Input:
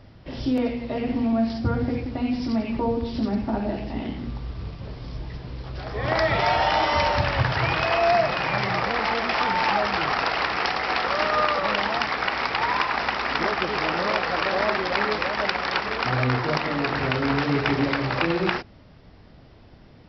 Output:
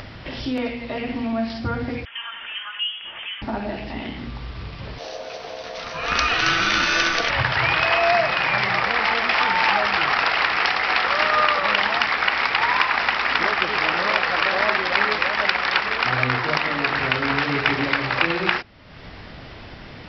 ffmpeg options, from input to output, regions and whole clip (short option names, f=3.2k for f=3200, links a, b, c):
-filter_complex "[0:a]asettb=1/sr,asplit=3[a][b][c];[a]atrim=end=2.054[d];[b]atrim=start=2.05:end=3.42,asetpts=PTS-STARTPTS,afade=t=in:d=0.004:c=qsin,afade=t=out:st=1.366:d=0.004:c=qsin,highpass=f=820:w=0.5412,highpass=f=820:w=1.3066,lowpass=f=3.2k:t=q:w=0.5098,lowpass=f=3.2k:t=q:w=0.6013,lowpass=f=3.2k:t=q:w=0.9,lowpass=f=3.2k:t=q:w=2.563,afreqshift=-3800[e];[c]atrim=start=3.416[f];[d][e]acrossfade=d=0.004:c1=hsin:c2=qsin[g];[g][f]acrossfade=d=0.004:c1=qsin:c2=hsin,asettb=1/sr,asplit=3[h][i][j];[h]atrim=end=4.984[k];[i]atrim=start=4.98:end=7.3,asetpts=PTS-STARTPTS,afade=t=in:d=0.004:c=qsin,afade=t=out:st=2.316:d=0.004:c=qsin,aemphasis=mode=production:type=75fm,aeval=exprs='val(0)*sin(2*PI*580*n/s)':c=same[l];[j]atrim=start=7.296[m];[k][l]acrossfade=d=0.004:c1=hsin:c2=qsin[n];[n][m]acrossfade=d=0.004:c1=qsin:c2=hsin,equalizer=f=2.3k:t=o:w=2.7:g=10.5,acompressor=mode=upward:threshold=-23dB:ratio=2.5,volume=-3.5dB"